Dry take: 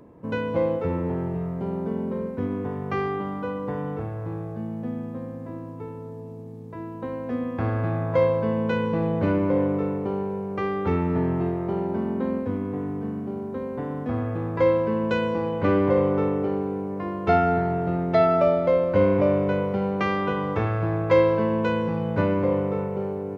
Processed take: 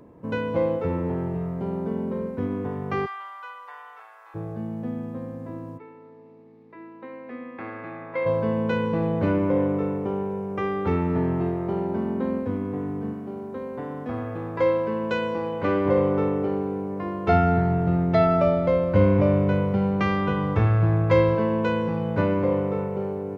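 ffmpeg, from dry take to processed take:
ffmpeg -i in.wav -filter_complex "[0:a]asplit=3[link_01][link_02][link_03];[link_01]afade=type=out:start_time=3.05:duration=0.02[link_04];[link_02]highpass=frequency=1000:width=0.5412,highpass=frequency=1000:width=1.3066,afade=type=in:start_time=3.05:duration=0.02,afade=type=out:start_time=4.34:duration=0.02[link_05];[link_03]afade=type=in:start_time=4.34:duration=0.02[link_06];[link_04][link_05][link_06]amix=inputs=3:normalize=0,asplit=3[link_07][link_08][link_09];[link_07]afade=type=out:start_time=5.77:duration=0.02[link_10];[link_08]highpass=420,equalizer=frequency=470:width_type=q:width=4:gain=-7,equalizer=frequency=690:width_type=q:width=4:gain=-10,equalizer=frequency=1000:width_type=q:width=4:gain=-5,equalizer=frequency=1500:width_type=q:width=4:gain=-5,equalizer=frequency=2100:width_type=q:width=4:gain=5,equalizer=frequency=3200:width_type=q:width=4:gain=-7,lowpass=frequency=3700:width=0.5412,lowpass=frequency=3700:width=1.3066,afade=type=in:start_time=5.77:duration=0.02,afade=type=out:start_time=8.25:duration=0.02[link_11];[link_09]afade=type=in:start_time=8.25:duration=0.02[link_12];[link_10][link_11][link_12]amix=inputs=3:normalize=0,asettb=1/sr,asplit=3[link_13][link_14][link_15];[link_13]atrim=end=9.284[link_16];[link_14]atrim=start=9.28:end=10.79,asetpts=PTS-STARTPTS,afade=type=in:duration=0.004:curve=qsin,afade=type=out:start_time=1.506:duration=0.004:curve=qsin,asuperstop=centerf=4300:order=4:qfactor=7.7[link_17];[link_15]atrim=start=10.786[link_18];[link_16][link_17]acrossfade=duration=0.004:curve1=hsin:curve2=qsin[link_19];[link_19][link_18]acrossfade=duration=0.004:curve1=qsin:curve2=hsin,asettb=1/sr,asplit=3[link_20][link_21][link_22];[link_20]atrim=end=13.134[link_23];[link_21]atrim=start=13.13:end=15.86,asetpts=PTS-STARTPTS,afade=type=in:duration=0.004:curve=qsin,afade=type=out:start_time=2.726:duration=0.004:curve=qsin,lowshelf=frequency=260:gain=-7[link_24];[link_22]atrim=start=15.856[link_25];[link_23][link_24]acrossfade=duration=0.004:curve1=hsin:curve2=qsin[link_26];[link_26][link_25]acrossfade=duration=0.004:curve1=qsin:curve2=hsin,asplit=3[link_27][link_28][link_29];[link_27]afade=type=out:start_time=17.31:duration=0.02[link_30];[link_28]asubboost=boost=2:cutoff=230,afade=type=in:start_time=17.31:duration=0.02,afade=type=out:start_time=21.34:duration=0.02[link_31];[link_29]afade=type=in:start_time=21.34:duration=0.02[link_32];[link_30][link_31][link_32]amix=inputs=3:normalize=0" out.wav

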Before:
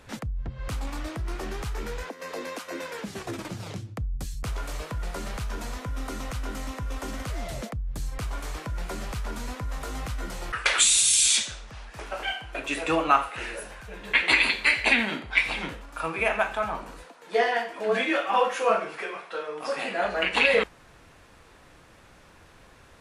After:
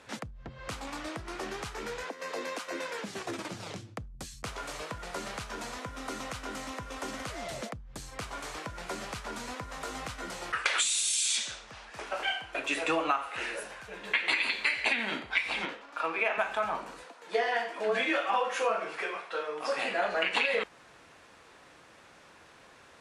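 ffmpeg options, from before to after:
ffmpeg -i in.wav -filter_complex "[0:a]asettb=1/sr,asplit=3[link_01][link_02][link_03];[link_01]atrim=end=15.654[link_04];[link_02]atrim=start=15.65:end=16.38,asetpts=PTS-STARTPTS,afade=type=in:duration=0.004:curve=qsin,afade=type=out:start_time=0.726:duration=0.004:curve=qsin,acrossover=split=210 5700:gain=0.1 1 0.224[link_05][link_06][link_07];[link_05][link_06][link_07]amix=inputs=3:normalize=0[link_08];[link_03]atrim=start=16.376[link_09];[link_04][link_08]acrossfade=duration=0.004:curve1=hsin:curve2=qsin[link_10];[link_10][link_09]acrossfade=duration=0.004:curve1=qsin:curve2=hsin,highpass=frequency=330:poles=1,acompressor=threshold=-24dB:ratio=12,lowpass=9700" out.wav

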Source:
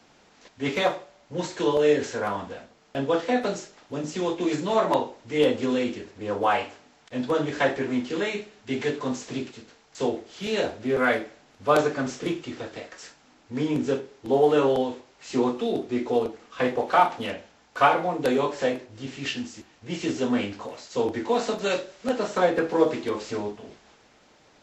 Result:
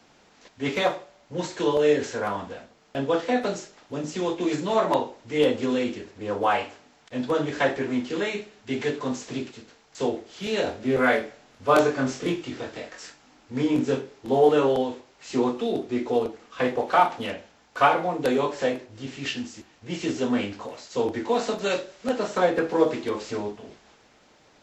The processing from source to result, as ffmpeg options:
ffmpeg -i in.wav -filter_complex "[0:a]asettb=1/sr,asplit=3[link_01][link_02][link_03];[link_01]atrim=end=10.644[link_04];[link_02]atrim=start=10.64:end=14.49,asetpts=PTS-STARTPTS,afade=type=in:duration=0.004:curve=qsin,afade=type=out:start_time=3.846:duration=0.004:curve=qsin,asplit=2[link_05][link_06];[link_06]adelay=23,volume=-3.5dB[link_07];[link_05][link_07]amix=inputs=2:normalize=0,atrim=end_sample=169785[link_08];[link_03]atrim=start=14.486[link_09];[link_04][link_08]acrossfade=duration=0.004:curve1=hsin:curve2=qsin[link_10];[link_10][link_09]acrossfade=duration=0.004:curve1=qsin:curve2=hsin" out.wav

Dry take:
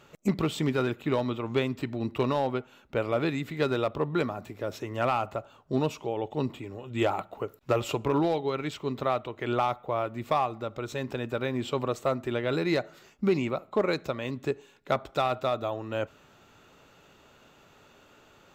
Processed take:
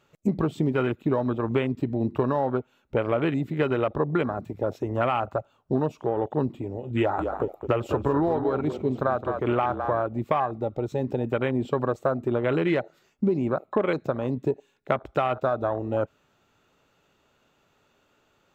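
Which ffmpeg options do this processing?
ffmpeg -i in.wav -filter_complex "[0:a]asettb=1/sr,asplit=3[link_01][link_02][link_03];[link_01]atrim=end=6.974[link_04];[link_02]atrim=start=6.97:end=10.03,asetpts=PTS-STARTPTS,afade=type=in:duration=0.004:curve=qsin,afade=type=out:start_time=3.056:duration=0.004:curve=qsin,asplit=4[link_05][link_06][link_07][link_08];[link_06]adelay=210,afreqshift=-34,volume=-10dB[link_09];[link_07]adelay=420,afreqshift=-68,volume=-20.5dB[link_10];[link_08]adelay=630,afreqshift=-102,volume=-30.9dB[link_11];[link_05][link_09][link_10][link_11]amix=inputs=4:normalize=0,atrim=end_sample=134946[link_12];[link_03]atrim=start=10.026[link_13];[link_04][link_12]acrossfade=duration=0.004:curve1=hsin:curve2=qsin[link_14];[link_14][link_13]acrossfade=duration=0.004:curve1=qsin:curve2=hsin,afwtdn=0.02,acompressor=threshold=-28dB:ratio=4,volume=7.5dB" out.wav

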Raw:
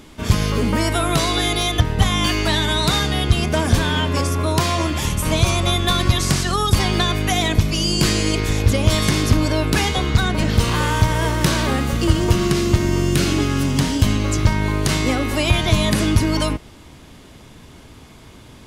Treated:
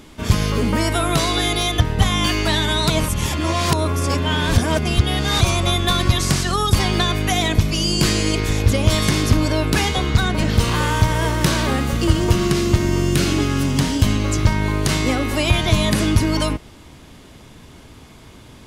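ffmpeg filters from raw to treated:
ffmpeg -i in.wav -filter_complex "[0:a]asplit=3[link_01][link_02][link_03];[link_01]atrim=end=2.902[link_04];[link_02]atrim=start=2.898:end=5.412,asetpts=PTS-STARTPTS,areverse[link_05];[link_03]atrim=start=5.408[link_06];[link_04][link_05]acrossfade=duration=0.004:curve1=hsin:curve2=hsin[link_07];[link_07][link_06]acrossfade=duration=0.004:curve1=hsin:curve2=hsin" out.wav

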